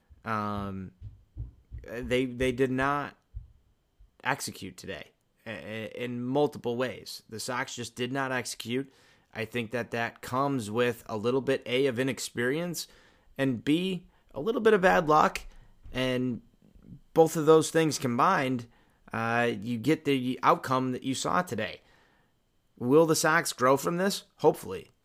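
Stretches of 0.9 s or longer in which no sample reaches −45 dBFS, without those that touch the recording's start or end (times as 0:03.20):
0:21.77–0:22.78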